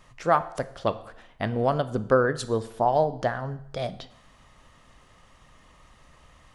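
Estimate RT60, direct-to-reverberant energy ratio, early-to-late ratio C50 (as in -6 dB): 0.70 s, 12.0 dB, 15.5 dB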